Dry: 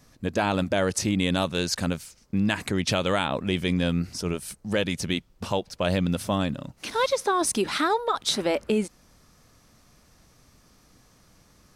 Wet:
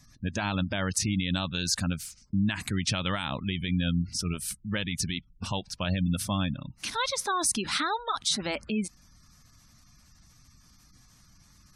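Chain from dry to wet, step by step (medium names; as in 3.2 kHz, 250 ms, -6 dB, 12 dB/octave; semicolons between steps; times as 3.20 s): peaking EQ 460 Hz -12.5 dB 1.5 oct; peak limiter -18.5 dBFS, peak gain reduction 6.5 dB; spectral gate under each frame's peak -25 dB strong; tone controls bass +2 dB, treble +4 dB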